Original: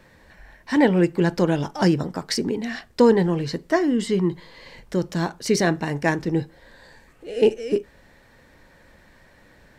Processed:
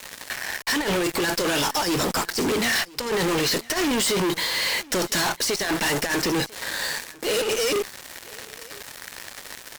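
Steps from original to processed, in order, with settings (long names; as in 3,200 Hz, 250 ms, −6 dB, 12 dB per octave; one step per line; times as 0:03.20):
high-pass filter 320 Hz 6 dB per octave
spectral tilt +3.5 dB per octave
compressor whose output falls as the input rises −28 dBFS, ratio −0.5
fuzz pedal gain 46 dB, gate −45 dBFS
on a send: single-tap delay 998 ms −23 dB
on the sum: level −8 dB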